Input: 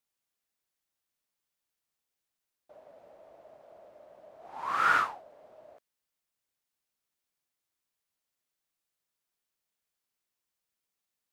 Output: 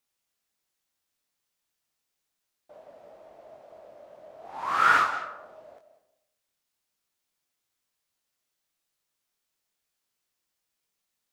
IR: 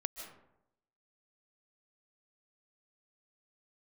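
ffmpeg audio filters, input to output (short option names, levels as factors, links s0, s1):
-filter_complex "[0:a]asplit=2[s0][s1];[s1]highshelf=f=3900:g=11.5[s2];[1:a]atrim=start_sample=2205,lowpass=6400,adelay=22[s3];[s2][s3]afir=irnorm=-1:irlink=0,volume=0.473[s4];[s0][s4]amix=inputs=2:normalize=0,volume=1.5"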